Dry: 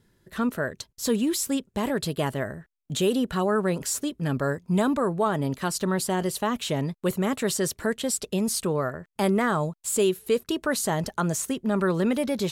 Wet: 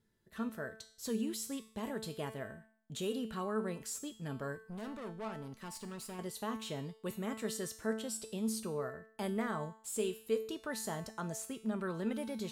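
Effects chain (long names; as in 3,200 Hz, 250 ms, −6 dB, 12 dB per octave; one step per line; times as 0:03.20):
0:04.55–0:06.19: tube saturation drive 27 dB, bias 0.5
tuned comb filter 220 Hz, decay 0.56 s, harmonics all, mix 80%
level −2 dB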